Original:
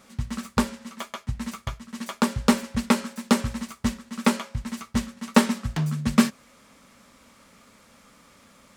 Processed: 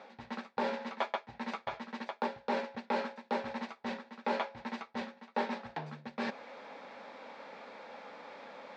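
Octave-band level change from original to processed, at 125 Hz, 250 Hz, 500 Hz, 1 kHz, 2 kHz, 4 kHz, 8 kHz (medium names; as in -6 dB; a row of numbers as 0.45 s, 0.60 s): -23.5 dB, -17.5 dB, -5.5 dB, -5.5 dB, -8.0 dB, -13.0 dB, under -25 dB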